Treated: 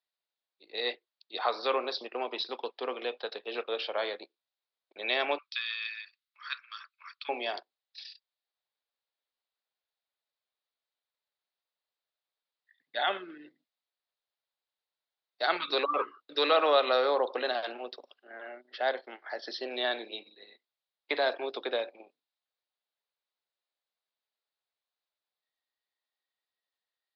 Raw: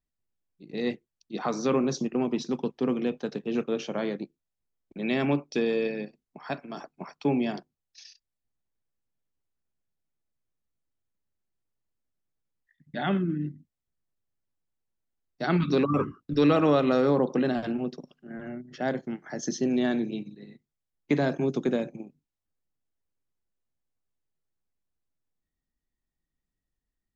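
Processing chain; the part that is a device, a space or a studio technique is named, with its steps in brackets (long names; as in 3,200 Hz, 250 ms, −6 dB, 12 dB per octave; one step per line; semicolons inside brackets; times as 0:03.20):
0:05.38–0:07.29: elliptic high-pass filter 1,200 Hz, stop band 40 dB
musical greeting card (downsampling to 11,025 Hz; high-pass filter 530 Hz 24 dB per octave; parametric band 3,800 Hz +8 dB 0.45 octaves)
level +2 dB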